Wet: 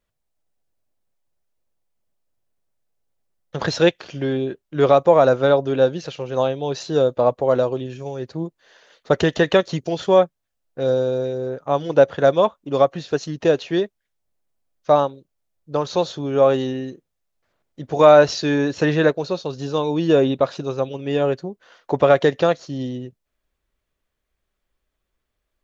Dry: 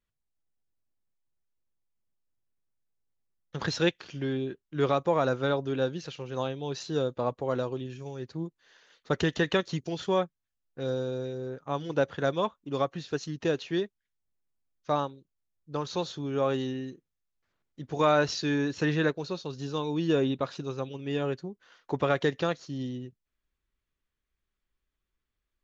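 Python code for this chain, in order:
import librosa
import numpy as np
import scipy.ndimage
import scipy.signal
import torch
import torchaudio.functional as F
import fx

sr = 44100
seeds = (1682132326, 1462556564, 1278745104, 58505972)

y = fx.peak_eq(x, sr, hz=610.0, db=8.5, octaves=0.89)
y = F.gain(torch.from_numpy(y), 6.5).numpy()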